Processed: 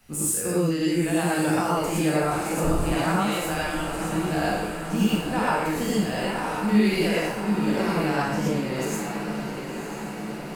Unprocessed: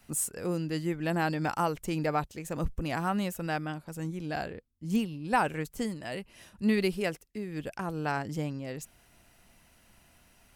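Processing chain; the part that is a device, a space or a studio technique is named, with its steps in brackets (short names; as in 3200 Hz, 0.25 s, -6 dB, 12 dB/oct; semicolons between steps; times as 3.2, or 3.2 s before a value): spectral trails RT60 0.68 s; 3.16–4.05 weighting filter A; diffused feedback echo 1.021 s, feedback 68%, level -9.5 dB; clipper into limiter (hard clip -13.5 dBFS, distortion -38 dB; limiter -20 dBFS, peak gain reduction 6.5 dB); non-linear reverb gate 0.14 s rising, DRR -5.5 dB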